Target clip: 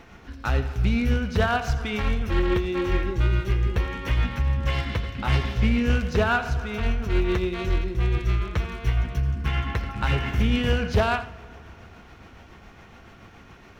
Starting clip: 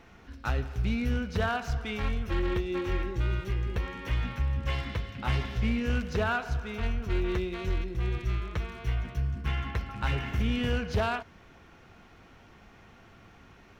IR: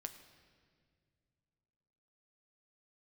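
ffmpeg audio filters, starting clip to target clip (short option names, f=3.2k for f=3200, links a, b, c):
-filter_complex "[0:a]tremolo=f=7.1:d=0.33,asplit=2[a][b];[1:a]atrim=start_sample=2205,asetrate=24696,aresample=44100,adelay=84[c];[b][c]afir=irnorm=-1:irlink=0,volume=-13dB[d];[a][d]amix=inputs=2:normalize=0,volume=7.5dB"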